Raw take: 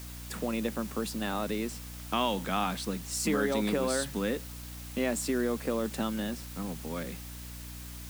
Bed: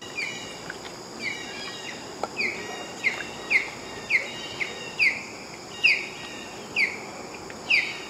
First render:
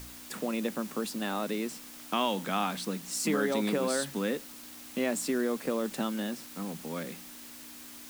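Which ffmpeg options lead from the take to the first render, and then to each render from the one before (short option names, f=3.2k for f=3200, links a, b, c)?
-af "bandreject=f=60:t=h:w=4,bandreject=f=120:t=h:w=4,bandreject=f=180:t=h:w=4"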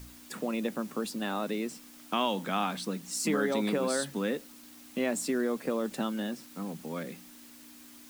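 -af "afftdn=nr=6:nf=-47"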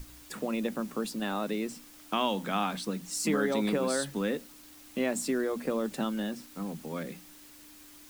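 -af "lowshelf=f=73:g=11.5,bandreject=f=60:t=h:w=6,bandreject=f=120:t=h:w=6,bandreject=f=180:t=h:w=6,bandreject=f=240:t=h:w=6"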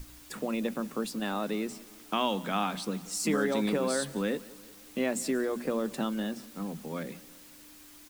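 -af "aecho=1:1:182|364|546|728:0.0891|0.0481|0.026|0.014"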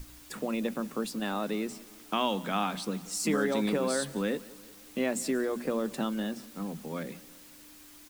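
-af anull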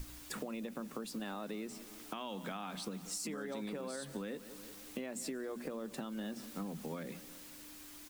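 -af "alimiter=level_in=2dB:limit=-24dB:level=0:latency=1:release=401,volume=-2dB,acompressor=threshold=-38dB:ratio=6"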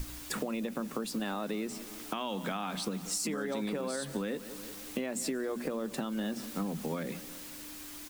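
-af "volume=7dB"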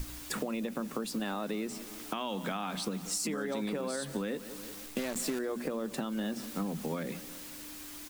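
-filter_complex "[0:a]asettb=1/sr,asplit=3[a][b][c];[a]atrim=end=4.864[d];[b]atrim=start=4.86:end=5.39,asetpts=PTS-STARTPTS,afade=t=in:d=0.004:c=qsin,afade=t=out:st=0.526:d=0.004:c=qsin,acrusher=bits=7:dc=4:mix=0:aa=0.000001[e];[c]atrim=start=5.386[f];[d][e]acrossfade=d=0.004:c1=hsin:c2=qsin[g];[g][f]acrossfade=d=0.004:c1=qsin:c2=hsin"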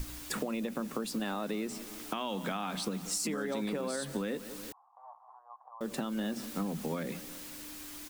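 -filter_complex "[0:a]asettb=1/sr,asplit=3[a][b][c];[a]atrim=end=4.724[d];[b]atrim=start=4.72:end=5.81,asetpts=PTS-STARTPTS,afade=t=in:d=0.004:c=qsin,afade=t=out:st=1.086:d=0.004:c=qsin,asuperpass=centerf=910:order=8:qfactor=2.3[e];[c]atrim=start=5.806[f];[d][e]acrossfade=d=0.004:c1=hsin:c2=qsin[g];[g][f]acrossfade=d=0.004:c1=qsin:c2=hsin"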